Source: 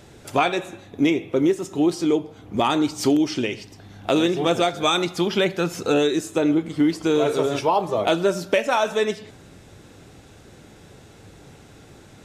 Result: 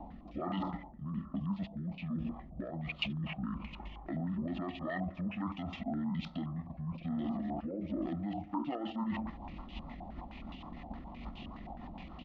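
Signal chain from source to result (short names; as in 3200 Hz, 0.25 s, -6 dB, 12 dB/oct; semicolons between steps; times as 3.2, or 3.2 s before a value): limiter -18.5 dBFS, peak gain reduction 10.5 dB; reverse; compressor 6:1, threshold -39 dBFS, peak gain reduction 15.5 dB; reverse; fixed phaser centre 830 Hz, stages 6; pitch shift -11.5 st; in parallel at -2.5 dB: level quantiser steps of 16 dB; on the sum: rotary speaker horn 1.2 Hz, later 6.7 Hz, at 7.8; stepped low-pass 9.6 Hz 790–2800 Hz; gain +4.5 dB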